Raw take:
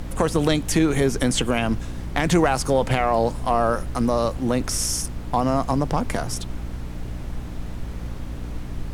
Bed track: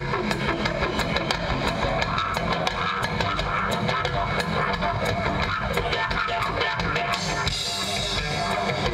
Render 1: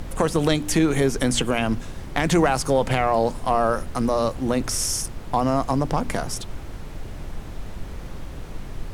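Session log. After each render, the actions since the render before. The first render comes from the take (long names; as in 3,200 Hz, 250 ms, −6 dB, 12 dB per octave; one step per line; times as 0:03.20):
hum removal 60 Hz, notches 5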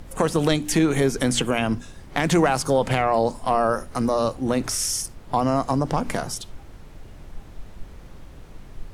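noise reduction from a noise print 8 dB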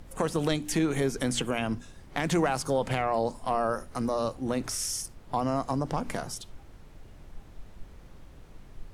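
level −7 dB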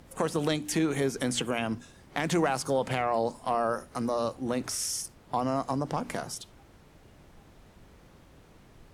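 high-pass filter 120 Hz 6 dB per octave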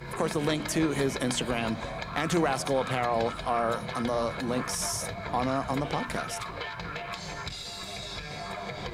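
mix in bed track −12 dB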